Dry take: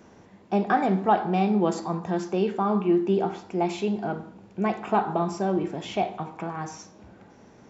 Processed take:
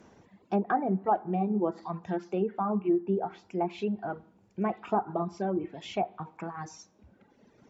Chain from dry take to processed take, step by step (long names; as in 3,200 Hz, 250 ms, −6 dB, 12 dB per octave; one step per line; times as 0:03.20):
treble cut that deepens with the level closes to 1,100 Hz, closed at −19 dBFS
reverb reduction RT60 1.9 s
level −3.5 dB